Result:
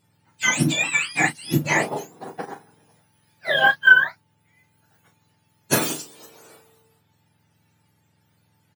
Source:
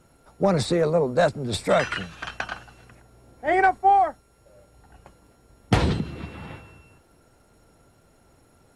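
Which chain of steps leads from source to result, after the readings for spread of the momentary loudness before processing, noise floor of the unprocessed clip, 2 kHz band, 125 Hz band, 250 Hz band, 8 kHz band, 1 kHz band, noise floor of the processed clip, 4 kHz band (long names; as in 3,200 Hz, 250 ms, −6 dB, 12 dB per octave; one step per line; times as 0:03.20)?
17 LU, −59 dBFS, +12.5 dB, −2.0 dB, 0.0 dB, can't be measured, −6.5 dB, −66 dBFS, +6.5 dB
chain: frequency axis turned over on the octave scale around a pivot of 1,100 Hz
double-tracking delay 34 ms −7.5 dB
expander for the loud parts 1.5 to 1, over −42 dBFS
level +7.5 dB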